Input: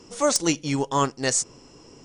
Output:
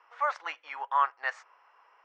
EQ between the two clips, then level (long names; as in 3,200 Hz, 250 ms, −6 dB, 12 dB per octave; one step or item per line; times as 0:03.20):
high-pass filter 800 Hz 24 dB per octave
low-pass filter 1,700 Hz 24 dB per octave
spectral tilt +4.5 dB per octave
0.0 dB